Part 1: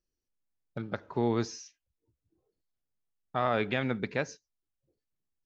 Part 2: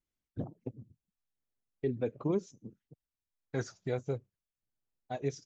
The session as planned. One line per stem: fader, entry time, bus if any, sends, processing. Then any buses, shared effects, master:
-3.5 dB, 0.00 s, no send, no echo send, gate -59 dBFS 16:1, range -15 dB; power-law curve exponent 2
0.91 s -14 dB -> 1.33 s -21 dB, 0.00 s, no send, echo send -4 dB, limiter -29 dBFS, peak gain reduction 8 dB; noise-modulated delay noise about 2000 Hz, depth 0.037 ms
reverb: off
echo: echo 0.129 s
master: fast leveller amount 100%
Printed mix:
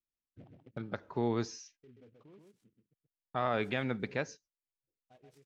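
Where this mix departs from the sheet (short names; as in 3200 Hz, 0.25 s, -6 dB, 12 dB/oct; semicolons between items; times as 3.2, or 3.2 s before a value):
stem 1: missing power-law curve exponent 2; master: missing fast leveller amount 100%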